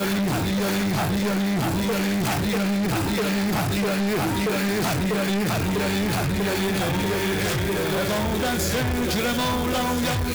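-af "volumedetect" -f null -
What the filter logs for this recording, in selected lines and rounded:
mean_volume: -23.1 dB
max_volume: -21.0 dB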